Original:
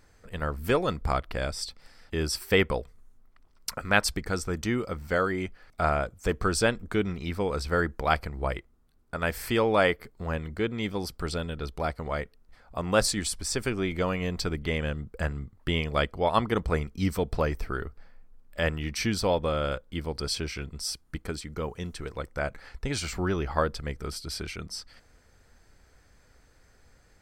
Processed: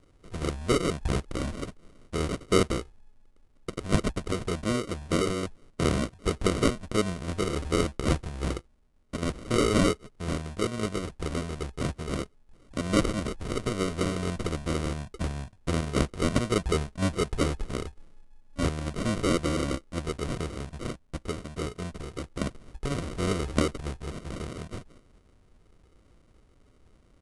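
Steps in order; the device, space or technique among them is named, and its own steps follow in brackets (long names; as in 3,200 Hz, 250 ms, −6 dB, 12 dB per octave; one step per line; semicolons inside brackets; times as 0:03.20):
crushed at another speed (tape speed factor 2×; decimation without filtering 26×; tape speed factor 0.5×)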